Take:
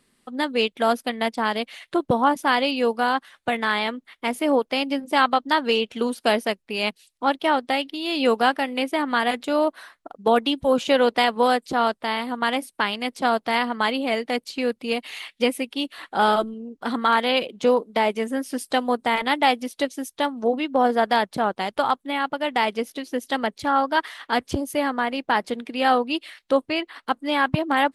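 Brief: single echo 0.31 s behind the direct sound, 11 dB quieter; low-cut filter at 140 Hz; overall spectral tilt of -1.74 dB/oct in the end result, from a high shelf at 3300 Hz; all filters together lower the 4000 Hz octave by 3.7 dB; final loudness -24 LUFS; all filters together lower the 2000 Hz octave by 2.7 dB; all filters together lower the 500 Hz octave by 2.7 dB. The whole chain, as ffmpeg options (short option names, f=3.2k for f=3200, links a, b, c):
-af "highpass=140,equalizer=f=500:t=o:g=-3,equalizer=f=2k:t=o:g=-3,highshelf=f=3.3k:g=4.5,equalizer=f=4k:t=o:g=-7,aecho=1:1:310:0.282,volume=1dB"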